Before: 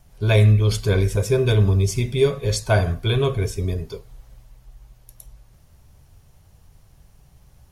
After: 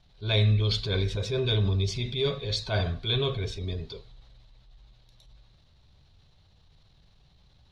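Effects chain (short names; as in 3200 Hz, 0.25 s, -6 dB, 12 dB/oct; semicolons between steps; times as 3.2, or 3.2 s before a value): synth low-pass 3900 Hz, resonance Q 6.5; transient shaper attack -7 dB, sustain +3 dB; gain -8 dB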